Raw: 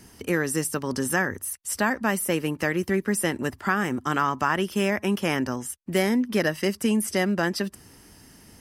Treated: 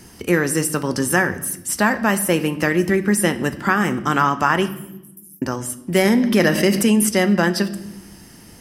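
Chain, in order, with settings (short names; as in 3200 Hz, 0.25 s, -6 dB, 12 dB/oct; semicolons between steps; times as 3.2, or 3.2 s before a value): 4.68–5.42 inverse Chebyshev high-pass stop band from 3000 Hz, stop band 70 dB; reverb RT60 0.95 s, pre-delay 6 ms, DRR 10 dB; 6.05–7.09 fast leveller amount 50%; gain +6 dB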